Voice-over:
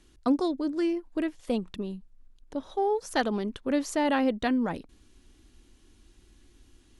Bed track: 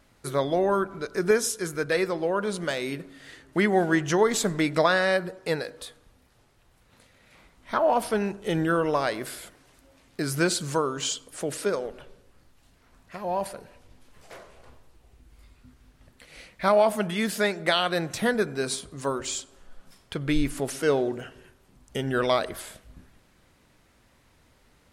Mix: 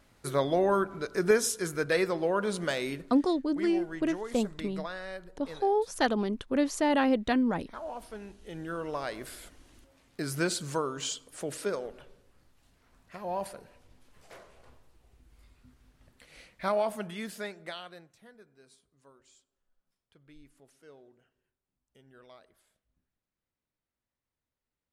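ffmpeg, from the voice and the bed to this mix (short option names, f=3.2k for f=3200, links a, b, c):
-filter_complex "[0:a]adelay=2850,volume=0dB[a];[1:a]volume=10dB,afade=t=out:st=2.82:d=0.49:silence=0.16788,afade=t=in:st=8.46:d=1.08:silence=0.251189,afade=t=out:st=16.22:d=1.9:silence=0.0530884[b];[a][b]amix=inputs=2:normalize=0"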